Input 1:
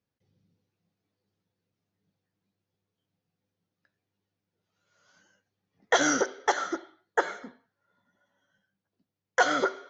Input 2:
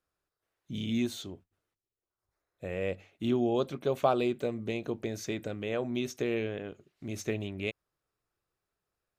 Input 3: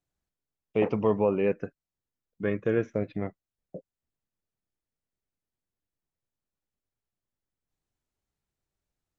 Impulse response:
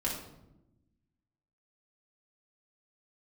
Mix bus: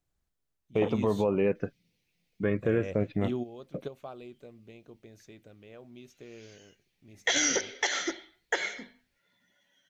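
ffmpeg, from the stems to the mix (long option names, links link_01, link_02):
-filter_complex "[0:a]highshelf=frequency=1700:width_type=q:width=3:gain=9.5,bandreject=frequency=50:width_type=h:width=6,bandreject=frequency=100:width_type=h:width=6,bandreject=frequency=150:width_type=h:width=6,bandreject=frequency=200:width_type=h:width=6,bandreject=frequency=250:width_type=h:width=6,adelay=1350,volume=-1dB[link_01];[1:a]volume=-4.5dB[link_02];[2:a]volume=2dB,asplit=2[link_03][link_04];[link_04]apad=whole_len=405176[link_05];[link_02][link_05]sidechaingate=range=-13dB:threshold=-48dB:ratio=16:detection=peak[link_06];[link_01][link_06][link_03]amix=inputs=3:normalize=0,lowshelf=frequency=73:gain=8,alimiter=limit=-15.5dB:level=0:latency=1:release=136"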